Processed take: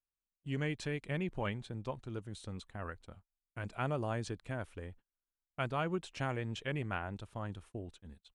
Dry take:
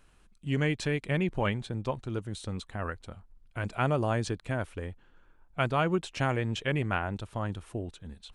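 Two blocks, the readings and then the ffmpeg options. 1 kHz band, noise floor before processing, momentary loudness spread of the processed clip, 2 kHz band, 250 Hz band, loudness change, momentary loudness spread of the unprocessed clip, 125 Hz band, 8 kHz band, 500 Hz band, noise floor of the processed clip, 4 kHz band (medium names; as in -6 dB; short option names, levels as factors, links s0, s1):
-8.0 dB, -61 dBFS, 13 LU, -8.0 dB, -8.0 dB, -8.0 dB, 13 LU, -8.0 dB, -8.0 dB, -8.0 dB, under -85 dBFS, -8.0 dB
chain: -af "agate=range=0.0251:threshold=0.00501:ratio=16:detection=peak,volume=0.398"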